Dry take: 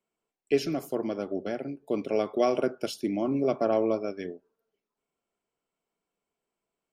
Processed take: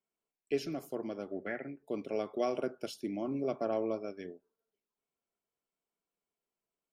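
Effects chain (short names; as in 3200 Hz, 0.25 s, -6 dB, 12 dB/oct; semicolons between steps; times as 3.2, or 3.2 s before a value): 1.33–1.83 synth low-pass 1900 Hz, resonance Q 8.5; gain -8 dB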